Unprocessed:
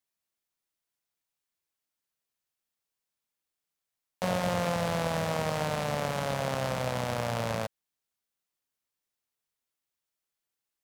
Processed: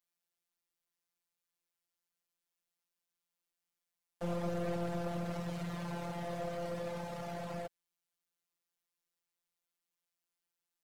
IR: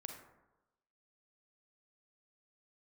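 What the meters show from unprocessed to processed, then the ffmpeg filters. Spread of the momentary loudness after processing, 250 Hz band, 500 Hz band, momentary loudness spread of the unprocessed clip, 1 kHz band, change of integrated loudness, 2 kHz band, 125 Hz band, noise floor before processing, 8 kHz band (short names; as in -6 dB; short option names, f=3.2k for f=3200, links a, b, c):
6 LU, -5.0 dB, -8.5 dB, 3 LU, -11.5 dB, -9.0 dB, -13.5 dB, -8.0 dB, under -85 dBFS, -15.0 dB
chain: -af "afftfilt=real='hypot(re,im)*cos(PI*b)':imag='0':win_size=1024:overlap=0.75,aeval=exprs='clip(val(0),-1,0.0133)':c=same"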